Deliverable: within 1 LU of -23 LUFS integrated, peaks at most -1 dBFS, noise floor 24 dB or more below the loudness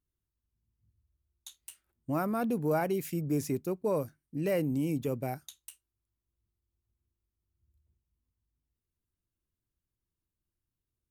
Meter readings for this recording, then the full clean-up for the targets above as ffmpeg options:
loudness -32.0 LUFS; peak level -18.5 dBFS; loudness target -23.0 LUFS
-> -af "volume=2.82"

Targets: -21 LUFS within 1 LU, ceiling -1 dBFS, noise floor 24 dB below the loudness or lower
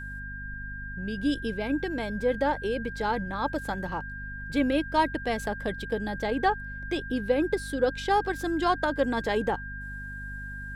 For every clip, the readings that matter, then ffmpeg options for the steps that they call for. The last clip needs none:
hum 50 Hz; highest harmonic 250 Hz; hum level -38 dBFS; steady tone 1.6 kHz; tone level -38 dBFS; loudness -29.5 LUFS; peak level -11.5 dBFS; loudness target -21.0 LUFS
-> -af "bandreject=f=50:t=h:w=6,bandreject=f=100:t=h:w=6,bandreject=f=150:t=h:w=6,bandreject=f=200:t=h:w=6,bandreject=f=250:t=h:w=6"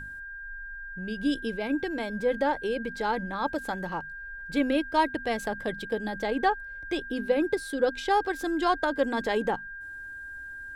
hum not found; steady tone 1.6 kHz; tone level -38 dBFS
-> -af "bandreject=f=1600:w=30"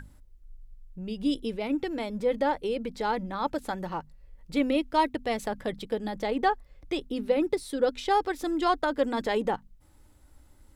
steady tone not found; loudness -29.0 LUFS; peak level -12.0 dBFS; loudness target -21.0 LUFS
-> -af "volume=2.51"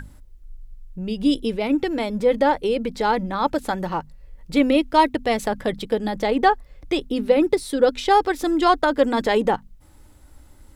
loudness -21.0 LUFS; peak level -4.0 dBFS; noise floor -48 dBFS

